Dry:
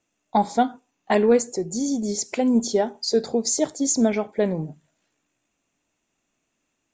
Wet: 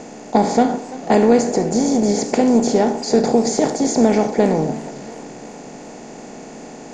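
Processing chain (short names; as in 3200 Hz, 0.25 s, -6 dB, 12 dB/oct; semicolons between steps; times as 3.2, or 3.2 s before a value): per-bin compression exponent 0.4; tilt -1.5 dB/oct; warbling echo 0.341 s, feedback 50%, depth 171 cents, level -18.5 dB; gain -1 dB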